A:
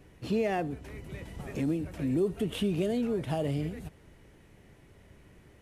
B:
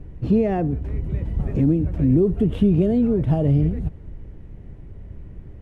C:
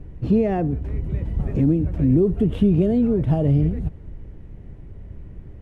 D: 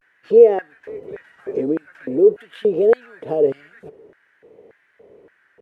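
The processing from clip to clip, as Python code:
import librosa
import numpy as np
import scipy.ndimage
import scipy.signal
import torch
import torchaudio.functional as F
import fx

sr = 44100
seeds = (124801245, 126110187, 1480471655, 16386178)

y1 = fx.tilt_eq(x, sr, slope=-4.5)
y1 = F.gain(torch.from_numpy(y1), 2.5).numpy()
y2 = y1
y3 = fx.filter_lfo_highpass(y2, sr, shape='square', hz=1.7, low_hz=450.0, high_hz=1600.0, q=6.8)
y3 = fx.vibrato(y3, sr, rate_hz=0.47, depth_cents=67.0)
y3 = F.gain(torch.from_numpy(y3), -1.5).numpy()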